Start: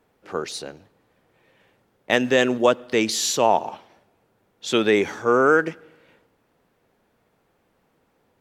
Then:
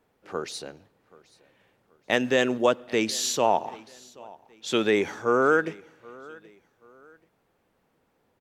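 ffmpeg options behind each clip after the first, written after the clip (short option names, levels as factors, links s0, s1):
-af "aecho=1:1:779|1558:0.0708|0.0248,volume=0.631"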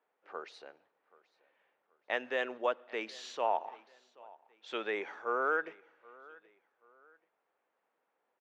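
-af "highpass=590,lowpass=2400,volume=0.447"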